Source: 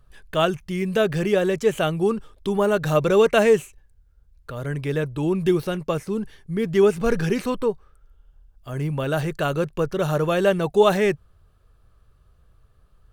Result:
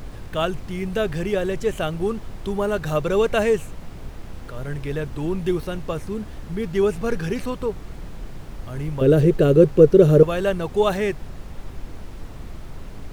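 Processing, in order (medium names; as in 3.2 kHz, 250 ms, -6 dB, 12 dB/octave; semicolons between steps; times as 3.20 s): 9.01–10.23 s: resonant low shelf 610 Hz +11 dB, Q 3; added noise brown -29 dBFS; trim -3 dB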